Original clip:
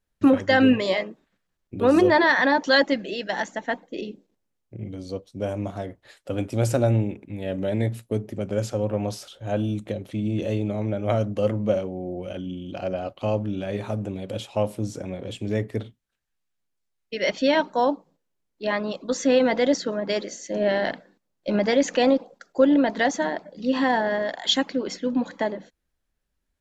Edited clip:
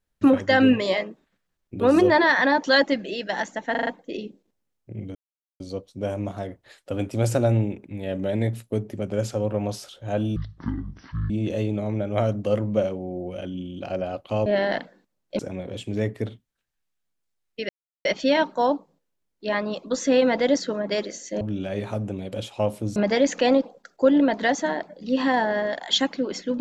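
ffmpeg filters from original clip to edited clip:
-filter_complex "[0:a]asplit=13[s0][s1][s2][s3][s4][s5][s6][s7][s8][s9][s10][s11][s12];[s0]atrim=end=3.752[s13];[s1]atrim=start=3.708:end=3.752[s14];[s2]atrim=start=3.708:end=3.752[s15];[s3]atrim=start=3.708:end=3.752[s16];[s4]atrim=start=3.708:end=4.99,asetpts=PTS-STARTPTS,afade=t=out:st=1.278:d=0.004:c=hsin,apad=pad_dur=0.45[s17];[s5]atrim=start=4.99:end=9.754,asetpts=PTS-STARTPTS,afade=t=in:d=0.004:c=hsin[s18];[s6]atrim=start=9.75:end=10.22,asetpts=PTS-STARTPTS,asetrate=22050,aresample=44100[s19];[s7]atrim=start=10.216:end=13.382[s20];[s8]atrim=start=20.588:end=21.522[s21];[s9]atrim=start=14.928:end=17.23,asetpts=PTS-STARTPTS,afade=t=out:st=2.298:d=0.004:c=hsin,apad=pad_dur=0.36[s22];[s10]atrim=start=17.23:end=20.592,asetpts=PTS-STARTPTS,afade=t=in:d=0.004:c=hsin[s23];[s11]atrim=start=13.378:end=14.932[s24];[s12]atrim=start=21.518[s25];[s13][s14]acrossfade=d=0.004:c1=hsin:c2=hsin[s26];[s26][s15]acrossfade=d=0.004:c1=hsin:c2=hsin[s27];[s27][s16]acrossfade=d=0.004:c1=hsin:c2=hsin[s28];[s17][s18]concat=n=2:v=0:a=1[s29];[s28][s29]acrossfade=d=0.004:c1=hsin:c2=hsin[s30];[s30][s19]acrossfade=d=0.004:c1=hsin:c2=hsin[s31];[s31][s20]acrossfade=d=0.004:c1=hsin:c2=hsin[s32];[s32][s21]acrossfade=d=0.004:c1=hsin:c2=hsin[s33];[s22][s23]concat=n=2:v=0:a=1[s34];[s33][s34]acrossfade=d=0.004:c1=hsin:c2=hsin[s35];[s35][s24]acrossfade=d=0.004:c1=hsin:c2=hsin[s36];[s36][s25]acrossfade=d=0.004:c1=hsin:c2=hsin"

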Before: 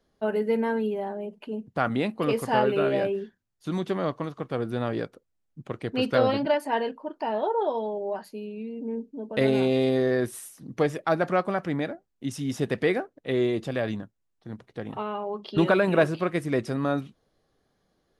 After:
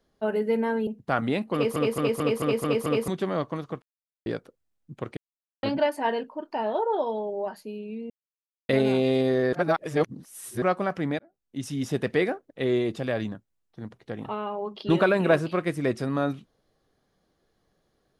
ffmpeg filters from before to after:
-filter_complex "[0:a]asplit=18[s0][s1][s2][s3][s4][s5][s6][s7][s8][s9][s10][s11][s12][s13][s14][s15][s16][s17];[s0]atrim=end=0.872[s18];[s1]atrim=start=1.548:end=2.442[s19];[s2]atrim=start=2.218:end=2.442[s20];[s3]atrim=start=2.218:end=2.442[s21];[s4]atrim=start=2.218:end=2.442[s22];[s5]atrim=start=2.218:end=2.442[s23];[s6]atrim=start=2.218:end=2.442[s24];[s7]atrim=start=2.218:end=2.442[s25];[s8]atrim=start=3.758:end=4.5,asetpts=PTS-STARTPTS,afade=t=out:st=0.738:d=0.004:c=hsin[s26];[s9]atrim=start=4.5:end=4.94,asetpts=PTS-STARTPTS,volume=0[s27];[s10]atrim=start=4.94:end=5.85,asetpts=PTS-STARTPTS,afade=t=in:d=0.004:c=hsin,afade=t=out:st=0.906:d=0.004:c=hsin[s28];[s11]atrim=start=5.85:end=6.31,asetpts=PTS-STARTPTS,volume=0[s29];[s12]atrim=start=6.31:end=8.78,asetpts=PTS-STARTPTS,afade=t=in:d=0.004:c=hsin,afade=t=out:st=2.466:d=0.004:c=hsin[s30];[s13]atrim=start=8.78:end=9.37,asetpts=PTS-STARTPTS,volume=0[s31];[s14]atrim=start=9.37:end=10.212,asetpts=PTS-STARTPTS,afade=t=in:d=0.004:c=hsin[s32];[s15]atrim=start=10.208:end=11.302,asetpts=PTS-STARTPTS,areverse[s33];[s16]atrim=start=11.298:end=11.87,asetpts=PTS-STARTPTS,afade=t=out:st=0.568:d=0.004:c=hsin[s34];[s17]atrim=start=11.87,asetpts=PTS-STARTPTS,afade=t=in:d=0.49[s35];[s18][s19]acrossfade=d=0.004:c1=hsin:c2=hsin[s36];[s36][s20]acrossfade=d=0.004:c1=hsin:c2=hsin[s37];[s37][s21]acrossfade=d=0.004:c1=hsin:c2=hsin[s38];[s38][s22]acrossfade=d=0.004:c1=hsin:c2=hsin[s39];[s39][s23]acrossfade=d=0.004:c1=hsin:c2=hsin[s40];[s40][s24]acrossfade=d=0.004:c1=hsin:c2=hsin[s41];[s41][s25]acrossfade=d=0.004:c1=hsin:c2=hsin[s42];[s26][s27][s28][s29][s30][s31][s32]concat=n=7:v=0:a=1[s43];[s42][s43]acrossfade=d=0.004:c1=hsin:c2=hsin[s44];[s44][s33]acrossfade=d=0.004:c1=hsin:c2=hsin[s45];[s34][s35]concat=n=2:v=0:a=1[s46];[s45][s46]acrossfade=d=0.004:c1=hsin:c2=hsin"

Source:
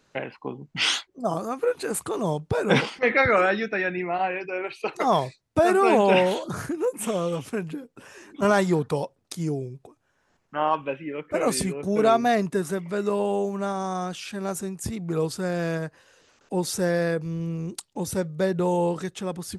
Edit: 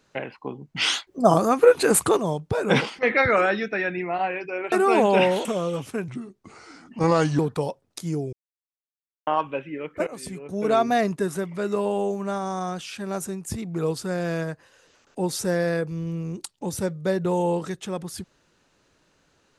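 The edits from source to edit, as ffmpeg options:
-filter_complex "[0:a]asplit=10[s0][s1][s2][s3][s4][s5][s6][s7][s8][s9];[s0]atrim=end=1.072[s10];[s1]atrim=start=1.068:end=2.172,asetpts=PTS-STARTPTS,volume=2.99[s11];[s2]atrim=start=2.168:end=4.722[s12];[s3]atrim=start=5.668:end=6.402[s13];[s4]atrim=start=7.038:end=7.674[s14];[s5]atrim=start=7.67:end=8.73,asetpts=PTS-STARTPTS,asetrate=35721,aresample=44100,atrim=end_sample=57711,asetpts=PTS-STARTPTS[s15];[s6]atrim=start=8.726:end=9.67,asetpts=PTS-STARTPTS,afade=t=out:st=0.94:d=0.004:c=hsin[s16];[s7]atrim=start=9.67:end=10.61,asetpts=PTS-STARTPTS,volume=0[s17];[s8]atrim=start=10.61:end=11.41,asetpts=PTS-STARTPTS,afade=t=in:d=0.004:c=hsin,afade=t=out:st=0.796:d=0.004:c=hsin:silence=0.0891251[s18];[s9]atrim=start=11.41,asetpts=PTS-STARTPTS,afade=t=in:d=0.8:silence=0.0891251[s19];[s10][s11]acrossfade=d=0.004:c1=hsin:c2=hsin[s20];[s20][s12]acrossfade=d=0.004:c1=hsin:c2=hsin[s21];[s21][s13]acrossfade=d=0.004:c1=hsin:c2=hsin[s22];[s22][s14]acrossfade=d=0.004:c1=hsin:c2=hsin[s23];[s23][s15]acrossfade=d=0.004:c1=hsin:c2=hsin[s24];[s16][s17][s18][s19]concat=n=4:v=0:a=1[s25];[s24][s25]acrossfade=d=0.004:c1=hsin:c2=hsin"

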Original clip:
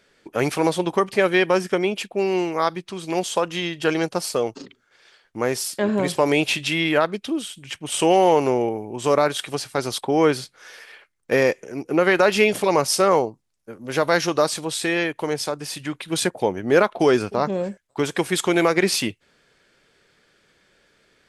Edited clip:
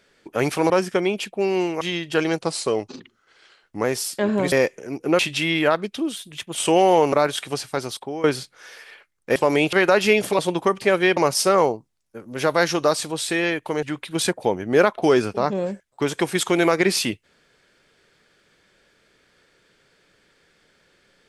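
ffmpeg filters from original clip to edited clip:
-filter_complex "[0:a]asplit=16[s0][s1][s2][s3][s4][s5][s6][s7][s8][s9][s10][s11][s12][s13][s14][s15];[s0]atrim=end=0.702[s16];[s1]atrim=start=1.478:end=2.592[s17];[s2]atrim=start=3.508:end=4.114[s18];[s3]atrim=start=4.11:end=5.44,asetpts=PTS-STARTPTS,asetrate=41013,aresample=44100[s19];[s4]atrim=start=5.436:end=6.122[s20];[s5]atrim=start=11.368:end=12.042[s21];[s6]atrim=start=6.488:end=7.464[s22];[s7]atrim=start=7.46:end=7.89,asetpts=PTS-STARTPTS,asetrate=48951,aresample=44100[s23];[s8]atrim=start=7.886:end=8.472[s24];[s9]atrim=start=9.138:end=10.25,asetpts=PTS-STARTPTS,afade=t=out:st=0.522:d=0.59:silence=0.158489[s25];[s10]atrim=start=10.25:end=11.372,asetpts=PTS-STARTPTS,afade=t=in:d=0.004:c=hsin:silence=0.158489[s26];[s11]atrim=start=6.118:end=6.492[s27];[s12]atrim=start=12.038:end=12.702[s28];[s13]atrim=start=0.698:end=1.482[s29];[s14]atrim=start=12.698:end=15.362[s30];[s15]atrim=start=15.798[s31];[s16][s17]acrossfade=d=0.004:c1=hsin:c2=hsin[s32];[s32][s18]acrossfade=d=0.004:c1=hsin:c2=hsin[s33];[s33][s19]acrossfade=d=0.004:c1=hsin:c2=hsin[s34];[s34][s20]acrossfade=d=0.004:c1=hsin:c2=hsin[s35];[s35][s21]acrossfade=d=0.004:c1=hsin:c2=hsin[s36];[s36][s22]acrossfade=d=0.004:c1=hsin:c2=hsin[s37];[s37][s23]acrossfade=d=0.004:c1=hsin:c2=hsin[s38];[s38][s24]acrossfade=d=0.004:c1=hsin:c2=hsin[s39];[s25][s26]concat=n=2:v=0:a=1[s40];[s39][s40]acrossfade=d=0.004:c1=hsin:c2=hsin[s41];[s41][s27]acrossfade=d=0.004:c1=hsin:c2=hsin[s42];[s42][s28]acrossfade=d=0.004:c1=hsin:c2=hsin[s43];[s43][s29]acrossfade=d=0.004:c1=hsin:c2=hsin[s44];[s44][s30]acrossfade=d=0.004:c1=hsin:c2=hsin[s45];[s45][s31]acrossfade=d=0.004:c1=hsin:c2=hsin"

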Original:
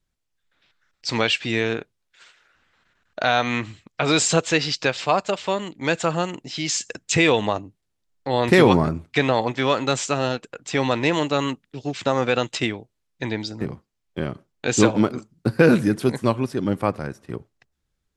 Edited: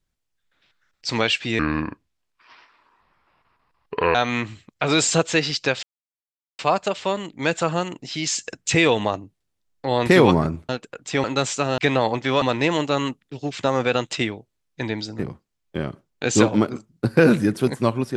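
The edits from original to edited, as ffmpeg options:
-filter_complex "[0:a]asplit=8[s0][s1][s2][s3][s4][s5][s6][s7];[s0]atrim=end=1.594[s8];[s1]atrim=start=1.59:end=3.33,asetpts=PTS-STARTPTS,asetrate=29988,aresample=44100,atrim=end_sample=112844,asetpts=PTS-STARTPTS[s9];[s2]atrim=start=3.326:end=5.01,asetpts=PTS-STARTPTS,afade=t=out:st=1.68:d=0.004:c=hsin,apad=pad_dur=0.76[s10];[s3]atrim=start=5.01:end=9.112,asetpts=PTS-STARTPTS,afade=t=in:d=0.004:c=hsin[s11];[s4]atrim=start=10.288:end=10.842[s12];[s5]atrim=start=9.748:end=10.292[s13];[s6]atrim=start=9.108:end=9.752[s14];[s7]atrim=start=10.838[s15];[s8][s9]acrossfade=d=0.004:c1=hsin:c2=hsin[s16];[s10][s11]concat=n=2:v=0:a=1[s17];[s16][s17]acrossfade=d=0.004:c1=hsin:c2=hsin[s18];[s18][s12]acrossfade=d=0.004:c1=hsin:c2=hsin[s19];[s19][s13]acrossfade=d=0.004:c1=hsin:c2=hsin[s20];[s20][s14]acrossfade=d=0.004:c1=hsin:c2=hsin[s21];[s21][s15]acrossfade=d=0.004:c1=hsin:c2=hsin"

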